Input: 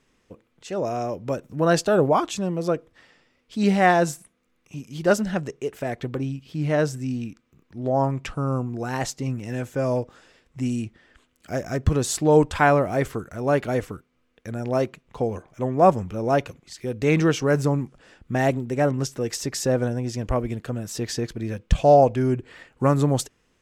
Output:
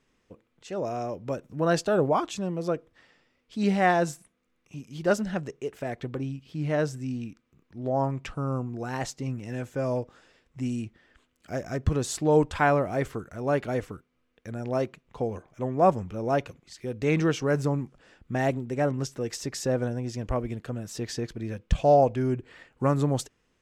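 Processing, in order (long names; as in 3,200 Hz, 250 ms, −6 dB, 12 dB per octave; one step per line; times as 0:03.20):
high-shelf EQ 10,000 Hz −6.5 dB
level −4.5 dB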